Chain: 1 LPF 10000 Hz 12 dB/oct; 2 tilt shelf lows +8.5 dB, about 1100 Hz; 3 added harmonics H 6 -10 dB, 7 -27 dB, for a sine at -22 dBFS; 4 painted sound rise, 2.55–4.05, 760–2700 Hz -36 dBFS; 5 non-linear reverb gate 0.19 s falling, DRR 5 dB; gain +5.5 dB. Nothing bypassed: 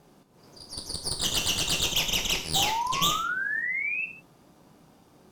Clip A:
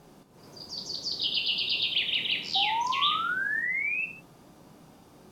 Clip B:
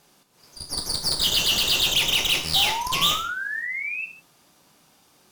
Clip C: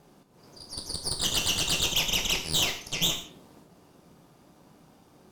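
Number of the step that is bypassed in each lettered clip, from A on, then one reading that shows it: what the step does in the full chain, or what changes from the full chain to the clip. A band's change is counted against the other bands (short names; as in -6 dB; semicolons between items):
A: 3, 8 kHz band -15.0 dB; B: 2, 4 kHz band +5.5 dB; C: 4, 1 kHz band -11.0 dB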